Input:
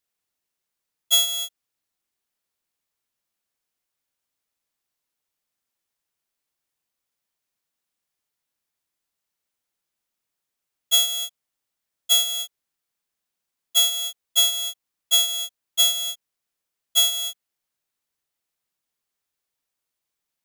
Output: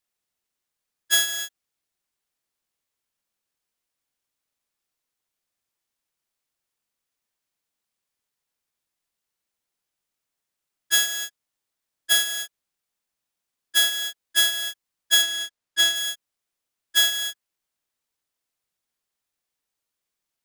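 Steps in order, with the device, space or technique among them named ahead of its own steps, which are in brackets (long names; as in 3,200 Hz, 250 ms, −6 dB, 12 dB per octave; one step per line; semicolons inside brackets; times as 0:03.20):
octave pedal (pitch-shifted copies added −12 semitones −5 dB)
0:15.22–0:15.96: high-shelf EQ 9,000 Hz −8.5 dB
level −2 dB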